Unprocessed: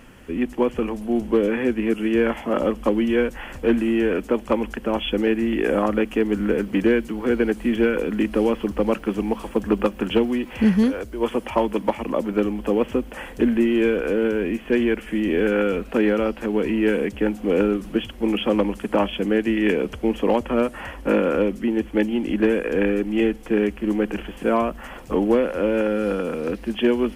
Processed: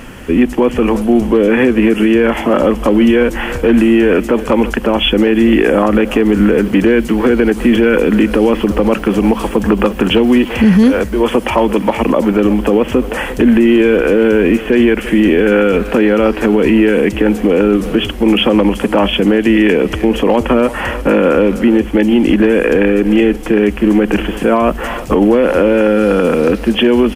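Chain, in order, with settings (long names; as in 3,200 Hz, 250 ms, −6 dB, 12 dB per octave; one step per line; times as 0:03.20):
far-end echo of a speakerphone 340 ms, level −18 dB
boost into a limiter +16 dB
level −1 dB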